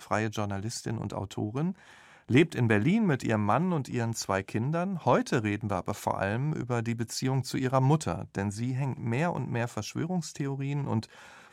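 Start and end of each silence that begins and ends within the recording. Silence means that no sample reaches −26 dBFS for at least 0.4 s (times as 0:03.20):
0:01.70–0:02.30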